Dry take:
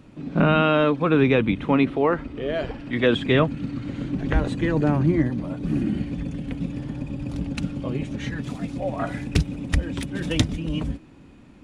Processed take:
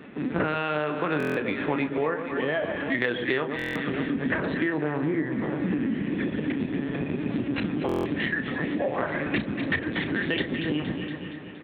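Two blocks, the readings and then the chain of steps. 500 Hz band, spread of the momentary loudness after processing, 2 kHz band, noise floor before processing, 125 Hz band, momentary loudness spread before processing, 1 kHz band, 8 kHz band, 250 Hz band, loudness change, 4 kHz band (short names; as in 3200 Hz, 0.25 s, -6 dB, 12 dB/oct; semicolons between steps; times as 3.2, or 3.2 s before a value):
-4.0 dB, 3 LU, +2.0 dB, -48 dBFS, -9.0 dB, 11 LU, -4.0 dB, n/a, -3.5 dB, -4.0 dB, -3.5 dB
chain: bell 1800 Hz +10 dB 0.37 oct; LPC vocoder at 8 kHz pitch kept; HPF 200 Hz 12 dB/oct; doubler 33 ms -10.5 dB; echo with dull and thin repeats by turns 0.117 s, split 1200 Hz, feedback 73%, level -9.5 dB; compressor 6:1, threshold -32 dBFS, peak gain reduction 18.5 dB; stuck buffer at 1.18/3.57/7.87, samples 1024, times 7; gain +8 dB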